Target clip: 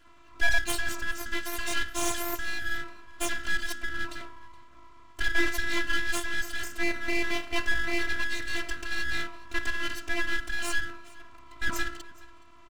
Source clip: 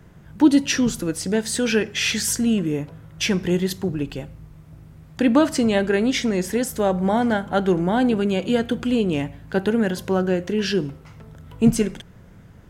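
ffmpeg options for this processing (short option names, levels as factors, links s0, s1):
-filter_complex "[0:a]bandreject=f=62.91:t=h:w=4,bandreject=f=125.82:t=h:w=4,bandreject=f=188.73:t=h:w=4,bandreject=f=251.64:t=h:w=4,bandreject=f=314.55:t=h:w=4,bandreject=f=377.46:t=h:w=4,bandreject=f=440.37:t=h:w=4,bandreject=f=503.28:t=h:w=4,bandreject=f=566.19:t=h:w=4,bandreject=f=629.1:t=h:w=4,bandreject=f=692.01:t=h:w=4,bandreject=f=754.92:t=h:w=4,bandreject=f=817.83:t=h:w=4,bandreject=f=880.74:t=h:w=4,bandreject=f=943.65:t=h:w=4,bandreject=f=1006.56:t=h:w=4,bandreject=f=1069.47:t=h:w=4,bandreject=f=1132.38:t=h:w=4,bandreject=f=1195.29:t=h:w=4,bandreject=f=1258.2:t=h:w=4,bandreject=f=1321.11:t=h:w=4,bandreject=f=1384.02:t=h:w=4,bandreject=f=1446.93:t=h:w=4,bandreject=f=1509.84:t=h:w=4,bandreject=f=1572.75:t=h:w=4,bandreject=f=1635.66:t=h:w=4,bandreject=f=1698.57:t=h:w=4,afftfilt=real='hypot(re,im)*cos(PI*b)':imag='0':win_size=512:overlap=0.75,aresample=16000,asoftclip=type=hard:threshold=0.168,aresample=44100,afreqshift=490,aeval=exprs='abs(val(0))':c=same,asplit=2[s0][s1];[s1]aecho=0:1:420:0.075[s2];[s0][s2]amix=inputs=2:normalize=0"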